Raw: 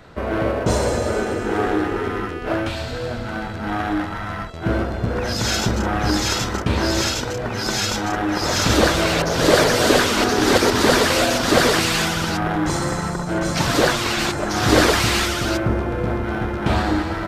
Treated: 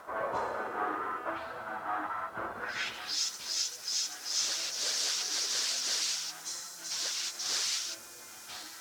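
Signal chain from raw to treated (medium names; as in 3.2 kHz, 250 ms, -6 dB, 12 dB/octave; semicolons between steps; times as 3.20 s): reverse; upward compressor, threshold -23 dBFS; reverse; pre-echo 174 ms -17.5 dB; added noise violet -33 dBFS; plain phase-vocoder stretch 0.51×; band-pass sweep 1.1 kHz -> 5.8 kHz, 2.54–3.23 s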